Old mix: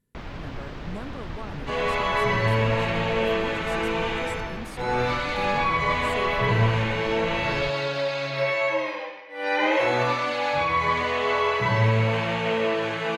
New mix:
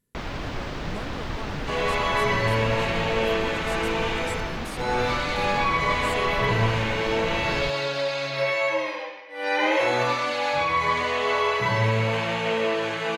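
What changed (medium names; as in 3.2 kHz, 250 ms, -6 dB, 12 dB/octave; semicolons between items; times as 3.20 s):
first sound +6.0 dB; master: add tone controls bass -3 dB, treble +5 dB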